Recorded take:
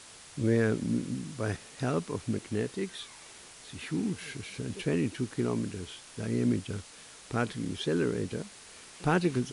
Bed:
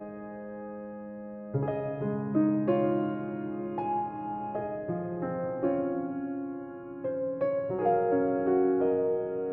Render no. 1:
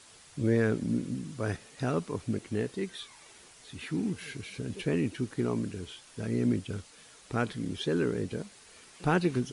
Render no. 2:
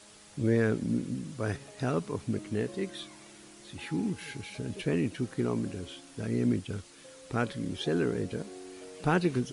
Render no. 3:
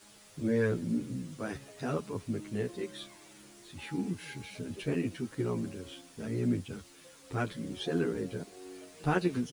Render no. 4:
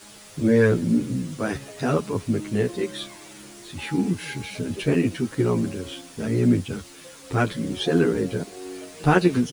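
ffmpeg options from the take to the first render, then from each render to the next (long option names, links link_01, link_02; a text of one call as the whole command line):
ffmpeg -i in.wav -af "afftdn=noise_reduction=6:noise_floor=-51" out.wav
ffmpeg -i in.wav -i bed.wav -filter_complex "[1:a]volume=-21dB[link_01];[0:a][link_01]amix=inputs=2:normalize=0" out.wav
ffmpeg -i in.wav -filter_complex "[0:a]acrusher=bits=9:mix=0:aa=0.000001,asplit=2[link_01][link_02];[link_02]adelay=10.1,afreqshift=-2.1[link_03];[link_01][link_03]amix=inputs=2:normalize=1" out.wav
ffmpeg -i in.wav -af "volume=11dB" out.wav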